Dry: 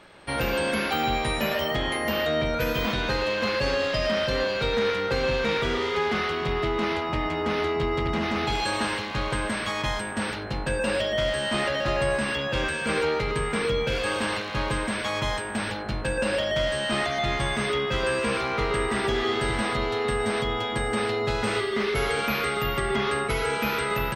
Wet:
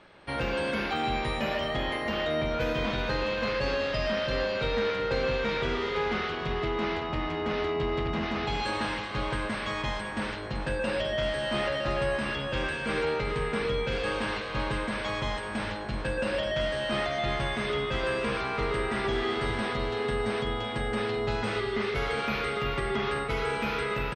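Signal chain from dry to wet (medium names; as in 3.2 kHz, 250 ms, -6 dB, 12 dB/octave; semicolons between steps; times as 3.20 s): distance through air 79 m; feedback delay 381 ms, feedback 52%, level -11 dB; trim -3.5 dB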